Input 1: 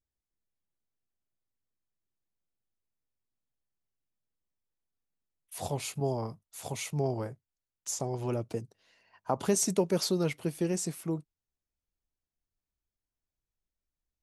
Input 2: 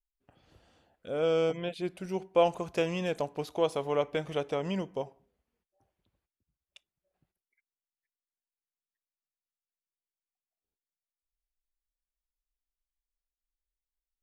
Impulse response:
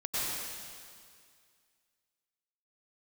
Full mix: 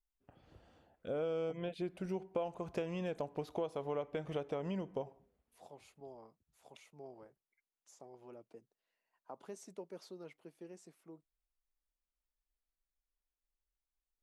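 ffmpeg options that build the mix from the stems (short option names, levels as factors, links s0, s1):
-filter_complex "[0:a]highpass=280,highshelf=f=3700:g=-12,volume=0.119[s0];[1:a]highshelf=f=2300:g=-9.5,volume=1.06[s1];[s0][s1]amix=inputs=2:normalize=0,acompressor=threshold=0.0178:ratio=6"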